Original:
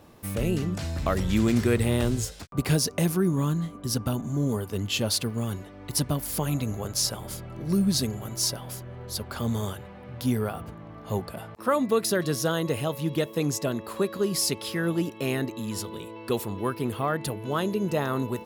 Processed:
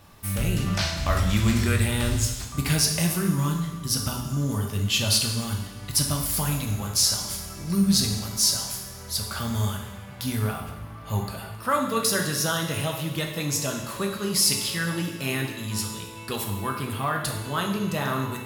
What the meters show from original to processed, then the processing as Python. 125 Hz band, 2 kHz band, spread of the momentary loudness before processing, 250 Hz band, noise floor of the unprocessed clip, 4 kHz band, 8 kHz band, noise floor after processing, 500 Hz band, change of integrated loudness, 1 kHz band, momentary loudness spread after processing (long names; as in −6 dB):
+2.5 dB, +5.0 dB, 10 LU, −0.5 dB, −44 dBFS, +6.5 dB, +6.5 dB, −40 dBFS, −4.0 dB, +2.5 dB, +3.0 dB, 10 LU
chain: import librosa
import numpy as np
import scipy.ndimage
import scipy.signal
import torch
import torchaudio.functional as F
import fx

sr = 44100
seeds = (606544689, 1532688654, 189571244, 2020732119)

y = fx.spec_box(x, sr, start_s=0.67, length_s=0.27, low_hz=480.0, high_hz=6500.0, gain_db=9)
y = fx.peak_eq(y, sr, hz=400.0, db=-12.5, octaves=2.0)
y = fx.rev_double_slope(y, sr, seeds[0], early_s=0.99, late_s=3.1, knee_db=-18, drr_db=1.0)
y = F.gain(torch.from_numpy(y), 4.0).numpy()